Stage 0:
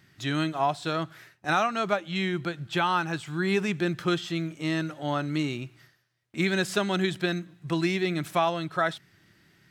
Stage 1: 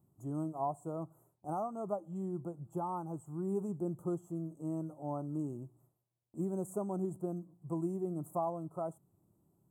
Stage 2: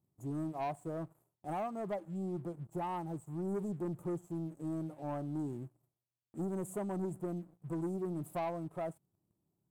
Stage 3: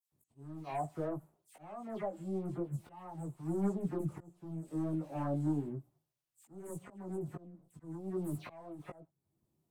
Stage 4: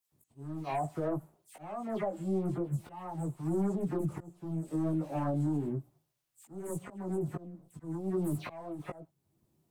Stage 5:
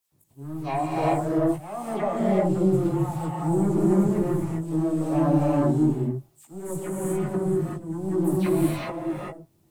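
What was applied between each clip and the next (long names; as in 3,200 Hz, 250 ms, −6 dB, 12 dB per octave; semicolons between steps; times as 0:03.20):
inverse Chebyshev band-stop filter 1,600–5,300 Hz, stop band 40 dB; level −9 dB
leveller curve on the samples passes 2; level −6 dB
all-pass dispersion lows, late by 121 ms, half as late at 2,500 Hz; volume swells 596 ms; multi-voice chorus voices 6, 0.57 Hz, delay 17 ms, depth 4.5 ms; level +5.5 dB
brickwall limiter −31 dBFS, peak gain reduction 7 dB; level +6.5 dB
reverb whose tail is shaped and stops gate 420 ms rising, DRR −4.5 dB; level +5.5 dB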